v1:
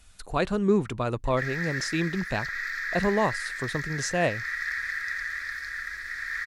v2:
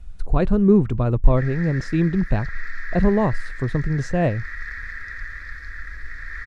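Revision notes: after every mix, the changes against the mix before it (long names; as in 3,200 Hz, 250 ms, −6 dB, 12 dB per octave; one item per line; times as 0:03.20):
master: add spectral tilt −4 dB per octave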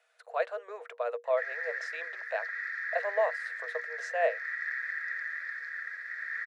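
master: add Chebyshev high-pass with heavy ripple 460 Hz, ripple 9 dB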